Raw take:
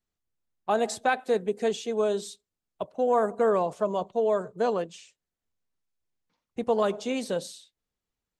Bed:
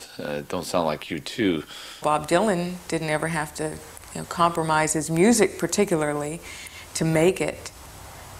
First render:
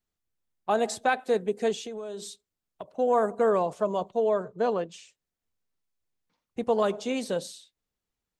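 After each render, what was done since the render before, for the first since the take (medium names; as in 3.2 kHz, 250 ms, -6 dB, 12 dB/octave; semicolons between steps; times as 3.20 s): 1.74–2.91 s: compression 10:1, threshold -33 dBFS; 4.29–4.92 s: distance through air 90 m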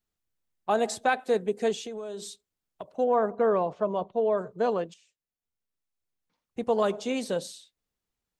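3.04–4.38 s: distance through air 210 m; 4.94–6.87 s: fade in, from -14.5 dB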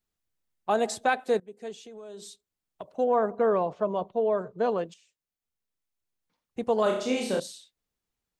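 1.40–2.91 s: fade in, from -21 dB; 4.18–4.78 s: distance through air 69 m; 6.83–7.40 s: flutter echo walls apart 5.4 m, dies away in 0.6 s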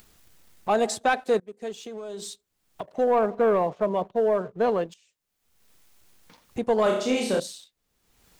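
upward compressor, threshold -34 dBFS; waveshaping leveller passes 1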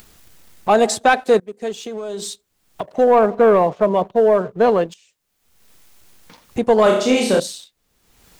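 trim +8.5 dB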